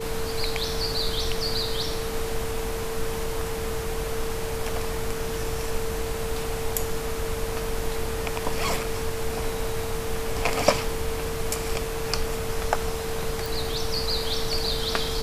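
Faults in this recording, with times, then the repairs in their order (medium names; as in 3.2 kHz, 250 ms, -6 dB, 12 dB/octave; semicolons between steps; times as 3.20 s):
whine 450 Hz -31 dBFS
13.46 s: pop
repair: de-click; band-stop 450 Hz, Q 30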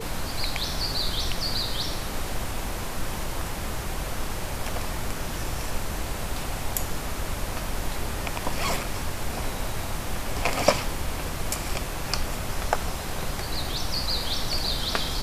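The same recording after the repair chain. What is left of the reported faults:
nothing left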